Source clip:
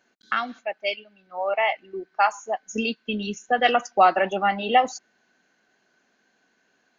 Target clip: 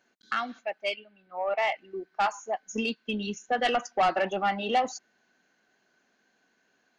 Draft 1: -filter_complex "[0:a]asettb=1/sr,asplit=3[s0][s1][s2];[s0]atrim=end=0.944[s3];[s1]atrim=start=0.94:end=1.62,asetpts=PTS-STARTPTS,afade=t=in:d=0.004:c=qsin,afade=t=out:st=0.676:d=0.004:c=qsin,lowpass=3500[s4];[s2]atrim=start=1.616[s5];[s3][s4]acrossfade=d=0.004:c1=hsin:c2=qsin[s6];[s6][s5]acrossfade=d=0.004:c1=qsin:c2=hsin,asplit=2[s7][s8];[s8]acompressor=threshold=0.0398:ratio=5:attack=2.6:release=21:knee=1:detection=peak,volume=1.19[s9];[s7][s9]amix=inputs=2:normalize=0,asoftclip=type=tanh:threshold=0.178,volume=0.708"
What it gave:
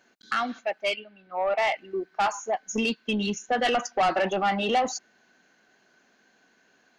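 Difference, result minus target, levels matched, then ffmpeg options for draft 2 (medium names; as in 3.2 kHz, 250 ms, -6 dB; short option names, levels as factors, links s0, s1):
compression: peak gain reduction +14.5 dB
-filter_complex "[0:a]asettb=1/sr,asplit=3[s0][s1][s2];[s0]atrim=end=0.944[s3];[s1]atrim=start=0.94:end=1.62,asetpts=PTS-STARTPTS,afade=t=in:d=0.004:c=qsin,afade=t=out:st=0.676:d=0.004:c=qsin,lowpass=3500[s4];[s2]atrim=start=1.616[s5];[s3][s4]acrossfade=d=0.004:c1=hsin:c2=qsin[s6];[s6][s5]acrossfade=d=0.004:c1=qsin:c2=hsin,asoftclip=type=tanh:threshold=0.178,volume=0.708"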